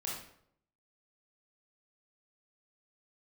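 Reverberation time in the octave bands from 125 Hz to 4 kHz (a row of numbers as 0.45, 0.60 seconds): 0.80, 0.75, 0.70, 0.60, 0.55, 0.50 seconds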